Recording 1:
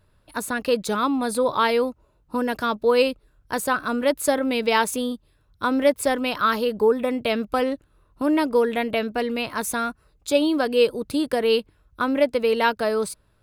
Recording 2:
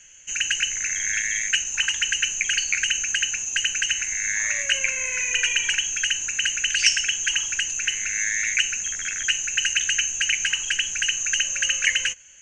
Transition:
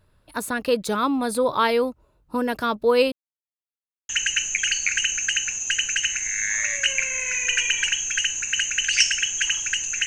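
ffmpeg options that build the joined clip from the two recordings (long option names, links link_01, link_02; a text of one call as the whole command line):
ffmpeg -i cue0.wav -i cue1.wav -filter_complex "[0:a]apad=whole_dur=10.06,atrim=end=10.06,asplit=2[link_01][link_02];[link_01]atrim=end=3.12,asetpts=PTS-STARTPTS,afade=type=out:start_time=3.116:duration=0.004:curve=hsin[link_03];[link_02]atrim=start=3.12:end=4.09,asetpts=PTS-STARTPTS,volume=0[link_04];[1:a]atrim=start=1.95:end=7.92,asetpts=PTS-STARTPTS,afade=type=in:duration=0.004:curve=hsin[link_05];[link_03][link_04][link_05]concat=n=3:v=0:a=1" out.wav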